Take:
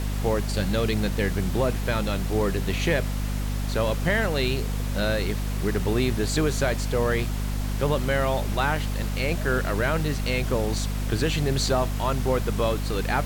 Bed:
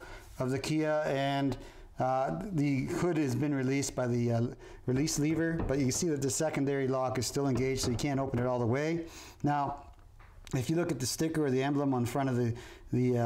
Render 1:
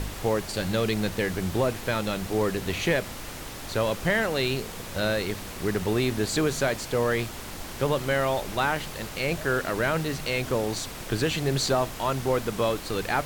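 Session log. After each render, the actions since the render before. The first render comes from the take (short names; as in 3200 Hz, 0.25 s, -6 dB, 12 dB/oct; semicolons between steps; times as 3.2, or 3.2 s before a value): de-hum 50 Hz, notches 5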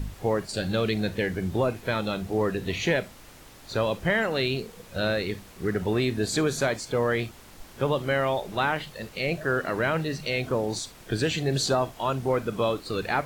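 noise print and reduce 11 dB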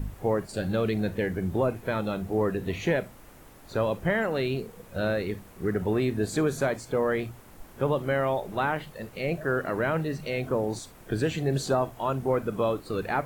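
bell 4400 Hz -10 dB 2 oct; notches 60/120 Hz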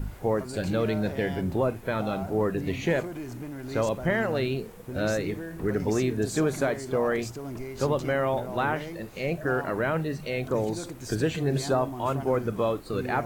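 add bed -7 dB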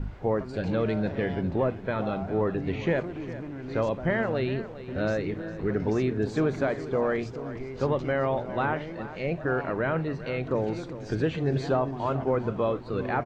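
air absorption 190 m; feedback echo 0.403 s, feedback 38%, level -14.5 dB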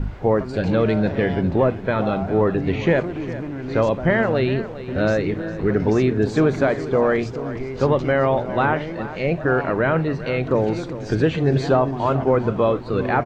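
gain +8 dB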